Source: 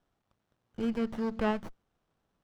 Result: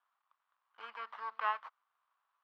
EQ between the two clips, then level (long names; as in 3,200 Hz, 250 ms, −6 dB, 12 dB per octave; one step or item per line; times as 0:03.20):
four-pole ladder high-pass 980 Hz, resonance 65%
high-frequency loss of the air 390 metres
high-shelf EQ 2,600 Hz +10.5 dB
+7.0 dB